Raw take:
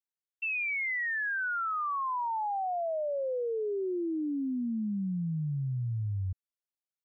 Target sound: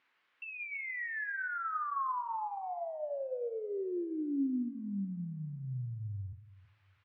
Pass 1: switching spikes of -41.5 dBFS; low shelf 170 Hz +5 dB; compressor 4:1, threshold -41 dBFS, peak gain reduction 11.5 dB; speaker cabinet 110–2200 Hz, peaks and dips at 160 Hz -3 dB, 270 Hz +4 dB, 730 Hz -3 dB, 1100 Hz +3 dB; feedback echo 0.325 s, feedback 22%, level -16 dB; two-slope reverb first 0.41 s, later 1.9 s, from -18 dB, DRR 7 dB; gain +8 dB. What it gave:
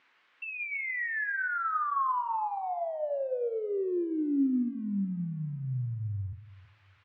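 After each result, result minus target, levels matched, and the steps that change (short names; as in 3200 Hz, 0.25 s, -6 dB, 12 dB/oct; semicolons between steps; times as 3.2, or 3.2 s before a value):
switching spikes: distortion +8 dB; compressor: peak gain reduction -5.5 dB
change: switching spikes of -50 dBFS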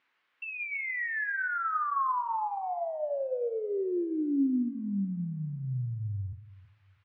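compressor: peak gain reduction -5.5 dB
change: compressor 4:1, threshold -48.5 dBFS, peak gain reduction 17 dB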